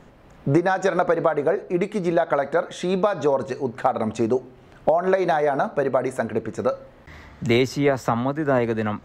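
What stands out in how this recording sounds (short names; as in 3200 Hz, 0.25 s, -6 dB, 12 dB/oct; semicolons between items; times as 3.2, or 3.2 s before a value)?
noise floor -49 dBFS; spectral tilt -5.5 dB/oct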